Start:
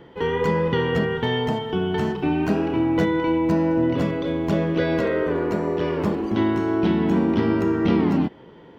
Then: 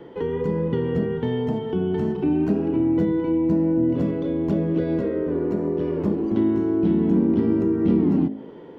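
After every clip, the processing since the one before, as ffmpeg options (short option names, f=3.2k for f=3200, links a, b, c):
-filter_complex "[0:a]equalizer=f=390:w=0.62:g=10,bandreject=f=53.38:t=h:w=4,bandreject=f=106.76:t=h:w=4,bandreject=f=160.14:t=h:w=4,bandreject=f=213.52:t=h:w=4,bandreject=f=266.9:t=h:w=4,bandreject=f=320.28:t=h:w=4,bandreject=f=373.66:t=h:w=4,bandreject=f=427.04:t=h:w=4,bandreject=f=480.42:t=h:w=4,bandreject=f=533.8:t=h:w=4,bandreject=f=587.18:t=h:w=4,bandreject=f=640.56:t=h:w=4,bandreject=f=693.94:t=h:w=4,bandreject=f=747.32:t=h:w=4,bandreject=f=800.7:t=h:w=4,acrossover=split=300[a][b];[b]acompressor=threshold=-27dB:ratio=6[c];[a][c]amix=inputs=2:normalize=0,volume=-3dB"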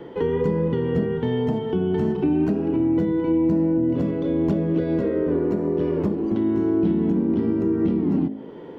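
-af "alimiter=limit=-16dB:level=0:latency=1:release=493,volume=3.5dB"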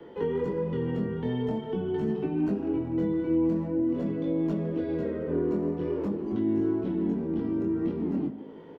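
-filter_complex "[0:a]acrossover=split=150|340|1200[a][b][c][d];[a]aeval=exprs='0.0282*(abs(mod(val(0)/0.0282+3,4)-2)-1)':c=same[e];[e][b][c][d]amix=inputs=4:normalize=0,flanger=delay=18.5:depth=6.4:speed=0.46,asplit=2[f][g];[g]adelay=150,highpass=300,lowpass=3.4k,asoftclip=type=hard:threshold=-22.5dB,volume=-13dB[h];[f][h]amix=inputs=2:normalize=0,volume=-4dB"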